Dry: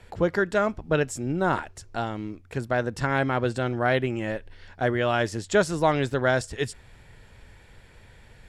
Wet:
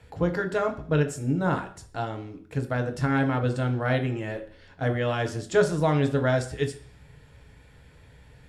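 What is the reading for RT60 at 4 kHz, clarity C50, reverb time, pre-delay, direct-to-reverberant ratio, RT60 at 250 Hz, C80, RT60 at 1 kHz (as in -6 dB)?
0.60 s, 12.5 dB, 0.50 s, 3 ms, 4.0 dB, 0.55 s, 16.0 dB, 0.50 s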